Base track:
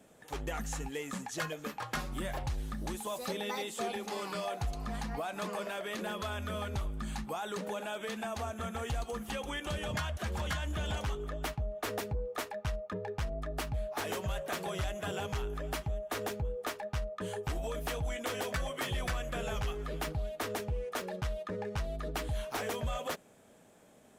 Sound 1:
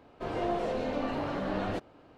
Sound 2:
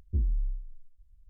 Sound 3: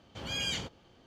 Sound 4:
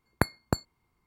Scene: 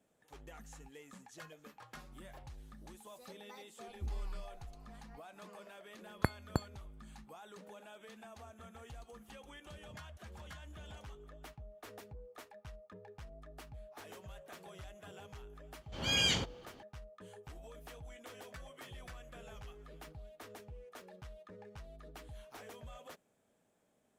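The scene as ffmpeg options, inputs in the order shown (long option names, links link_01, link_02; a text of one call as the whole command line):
ffmpeg -i bed.wav -i cue0.wav -i cue1.wav -i cue2.wav -i cue3.wav -filter_complex "[0:a]volume=-15.5dB[link_01];[4:a]bass=frequency=250:gain=2,treble=frequency=4000:gain=-4[link_02];[3:a]dynaudnorm=framelen=150:gausssize=3:maxgain=14dB[link_03];[2:a]atrim=end=1.29,asetpts=PTS-STARTPTS,volume=-12.5dB,afade=type=in:duration=0.004:curve=hsin,afade=type=out:start_time=1.286:duration=0.004:curve=hsin,adelay=3880[link_04];[link_02]atrim=end=1.06,asetpts=PTS-STARTPTS,volume=-7.5dB,afade=type=in:duration=0.004:curve=hsin,afade=type=out:start_time=1.056:duration=0.004:curve=hsin,adelay=6030[link_05];[link_03]atrim=end=1.06,asetpts=PTS-STARTPTS,volume=-10.5dB,afade=type=in:duration=0.004:curve=hsin,afade=type=out:start_time=1.056:duration=0.004:curve=hsin,adelay=15770[link_06];[link_01][link_04][link_05][link_06]amix=inputs=4:normalize=0" out.wav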